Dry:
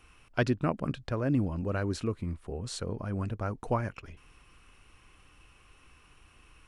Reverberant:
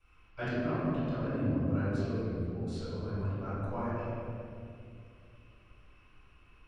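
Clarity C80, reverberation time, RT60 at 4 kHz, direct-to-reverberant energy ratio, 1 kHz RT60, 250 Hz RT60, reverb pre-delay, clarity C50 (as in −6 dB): −2.0 dB, 2.5 s, 1.4 s, −14.5 dB, 2.0 s, 3.3 s, 3 ms, −5.0 dB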